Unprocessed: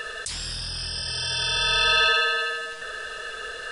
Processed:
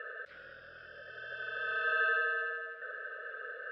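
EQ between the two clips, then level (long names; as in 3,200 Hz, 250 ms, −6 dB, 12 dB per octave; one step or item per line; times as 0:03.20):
pair of resonant band-passes 900 Hz, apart 1.4 octaves
high-frequency loss of the air 360 metres
notch filter 1,000 Hz, Q 20
+1.0 dB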